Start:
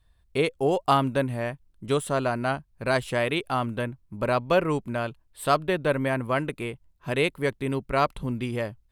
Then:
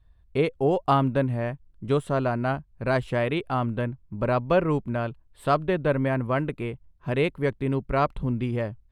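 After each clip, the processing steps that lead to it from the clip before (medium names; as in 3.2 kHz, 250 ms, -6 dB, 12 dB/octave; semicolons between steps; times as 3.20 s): low-pass 2 kHz 6 dB/octave; bass shelf 190 Hz +6 dB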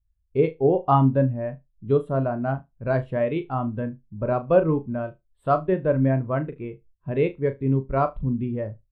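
flutter echo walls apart 6.4 m, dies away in 0.26 s; spectral contrast expander 1.5:1; trim +2 dB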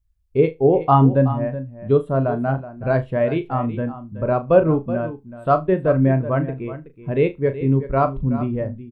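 delay 375 ms -13.5 dB; trim +4 dB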